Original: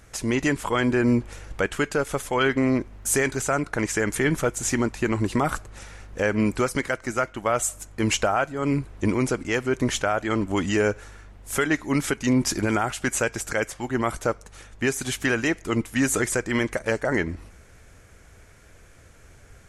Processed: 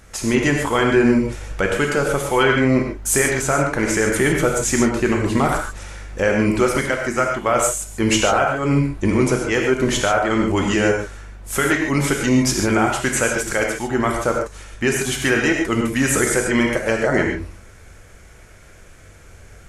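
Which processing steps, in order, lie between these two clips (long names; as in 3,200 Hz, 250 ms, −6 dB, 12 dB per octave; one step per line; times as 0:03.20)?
reverb whose tail is shaped and stops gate 170 ms flat, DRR 0.5 dB
level +3.5 dB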